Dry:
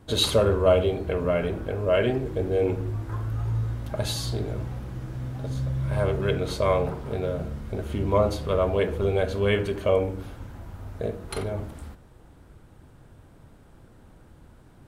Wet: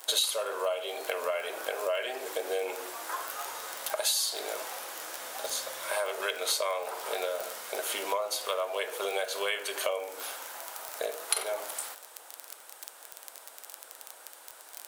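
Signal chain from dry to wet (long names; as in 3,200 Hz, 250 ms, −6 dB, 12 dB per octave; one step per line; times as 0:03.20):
surface crackle 23 per second −39 dBFS
high-pass filter 580 Hz 24 dB per octave
high-shelf EQ 3,300 Hz +9.5 dB
downward compressor 8 to 1, threshold −35 dBFS, peak gain reduction 21 dB
high-shelf EQ 6,900 Hz +8 dB
level +6.5 dB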